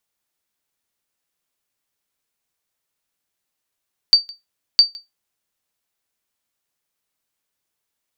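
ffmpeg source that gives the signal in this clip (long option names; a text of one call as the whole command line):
ffmpeg -f lavfi -i "aevalsrc='0.794*(sin(2*PI*4620*mod(t,0.66))*exp(-6.91*mod(t,0.66)/0.18)+0.0562*sin(2*PI*4620*max(mod(t,0.66)-0.16,0))*exp(-6.91*max(mod(t,0.66)-0.16,0)/0.18))':duration=1.32:sample_rate=44100" out.wav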